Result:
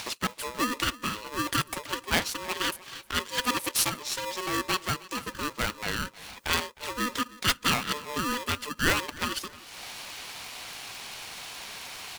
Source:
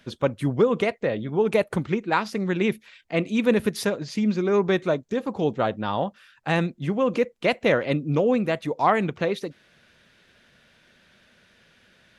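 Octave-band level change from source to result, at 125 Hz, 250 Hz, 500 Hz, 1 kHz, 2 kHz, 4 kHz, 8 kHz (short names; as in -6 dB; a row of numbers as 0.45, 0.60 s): -10.0, -10.5, -15.5, -3.5, +0.5, +7.5, +12.5 dB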